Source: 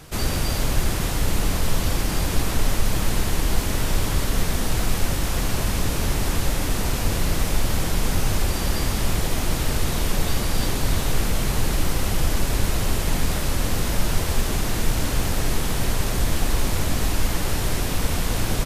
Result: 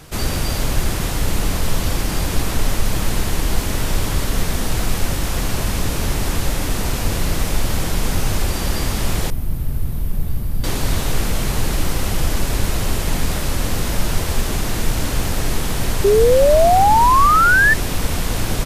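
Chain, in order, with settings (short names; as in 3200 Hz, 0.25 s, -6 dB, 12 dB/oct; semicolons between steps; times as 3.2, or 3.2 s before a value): 9.3–10.64 EQ curve 130 Hz 0 dB, 420 Hz -13 dB, 7100 Hz -22 dB, 13000 Hz -5 dB; 16.04–17.74 painted sound rise 390–1800 Hz -15 dBFS; gain +2.5 dB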